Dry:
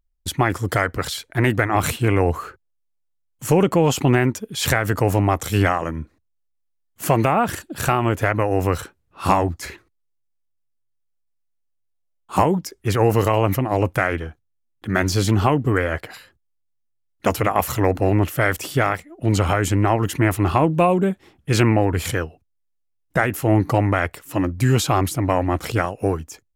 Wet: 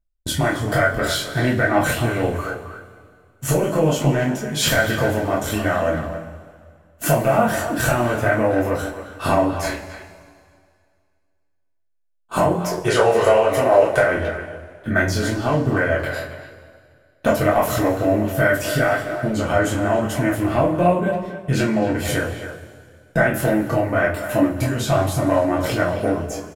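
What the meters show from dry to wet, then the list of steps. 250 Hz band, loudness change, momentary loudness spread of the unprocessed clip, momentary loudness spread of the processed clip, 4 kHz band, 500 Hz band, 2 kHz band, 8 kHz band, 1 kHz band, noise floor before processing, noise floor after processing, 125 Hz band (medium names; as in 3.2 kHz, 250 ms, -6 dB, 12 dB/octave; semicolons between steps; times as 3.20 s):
+0.5 dB, +0.5 dB, 9 LU, 10 LU, +2.0 dB, +3.0 dB, +3.0 dB, +1.0 dB, -0.5 dB, -71 dBFS, -65 dBFS, -3.0 dB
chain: time-frequency box 12.71–13.99 s, 350–11000 Hz +12 dB; gate -41 dBFS, range -14 dB; bass shelf 340 Hz +7.5 dB; compression 6:1, threshold -19 dBFS, peak gain reduction 18 dB; chorus 1.2 Hz, depth 2.8 ms; small resonant body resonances 610/1500 Hz, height 12 dB, ringing for 40 ms; speakerphone echo 270 ms, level -10 dB; two-slope reverb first 0.24 s, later 2.1 s, from -19 dB, DRR -2.5 dB; trim +3 dB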